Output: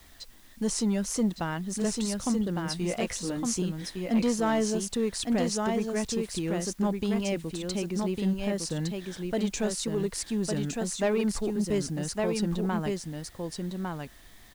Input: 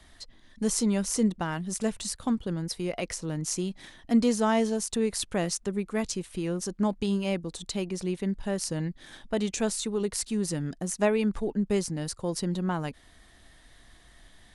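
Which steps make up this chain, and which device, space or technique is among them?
2.64–3.62 doubler 16 ms -2.5 dB; echo 1.158 s -4.5 dB; compact cassette (soft clip -18 dBFS, distortion -18 dB; LPF 8900 Hz 12 dB/oct; wow and flutter; white noise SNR 30 dB)

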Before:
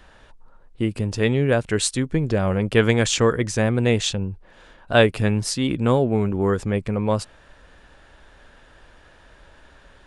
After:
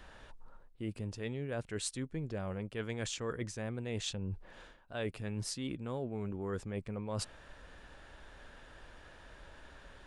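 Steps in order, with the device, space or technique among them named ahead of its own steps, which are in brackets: compression on the reversed sound (reverse; compressor 10:1, threshold -31 dBFS, peak gain reduction 21 dB; reverse); gain -4 dB

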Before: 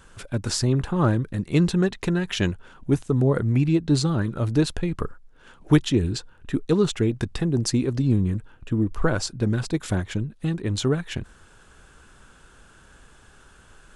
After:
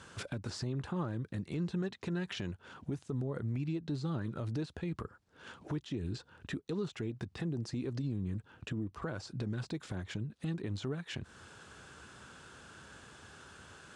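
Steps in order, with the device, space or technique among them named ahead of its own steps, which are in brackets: broadcast voice chain (HPF 77 Hz 24 dB/oct; de-esser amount 95%; compressor 4:1, threshold -34 dBFS, peak gain reduction 18.5 dB; bell 4600 Hz +3 dB 0.77 oct; limiter -28 dBFS, peak gain reduction 8 dB); LPF 8500 Hz 12 dB/oct

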